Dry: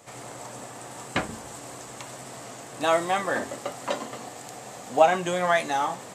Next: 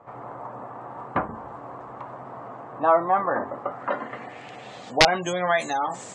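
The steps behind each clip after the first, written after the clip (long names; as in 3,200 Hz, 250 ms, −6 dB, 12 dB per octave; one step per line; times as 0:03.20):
gate on every frequency bin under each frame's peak −25 dB strong
wrap-around overflow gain 9 dB
low-pass filter sweep 1,100 Hz → 7,300 Hz, 0:03.60–0:05.44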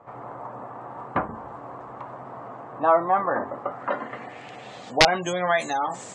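no processing that can be heard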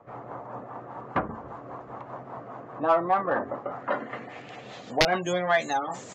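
downsampling to 16,000 Hz
rotating-speaker cabinet horn 5 Hz
in parallel at −3.5 dB: soft clipping −19.5 dBFS, distortion −11 dB
on the sum: level −3 dB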